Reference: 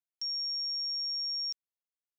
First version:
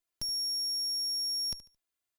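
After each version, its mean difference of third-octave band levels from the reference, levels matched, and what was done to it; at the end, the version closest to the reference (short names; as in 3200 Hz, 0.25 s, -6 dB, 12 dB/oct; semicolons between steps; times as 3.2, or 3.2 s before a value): 4.5 dB: minimum comb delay 2.9 ms; notch 5500 Hz, Q 21; on a send: feedback echo 73 ms, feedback 28%, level -15.5 dB; on the sum: gain +8.5 dB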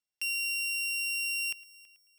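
9.5 dB: sample sorter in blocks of 16 samples; bell 5000 Hz +3.5 dB 2.7 oct; on a send: multi-head echo 0.109 s, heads first and third, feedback 44%, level -21 dB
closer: first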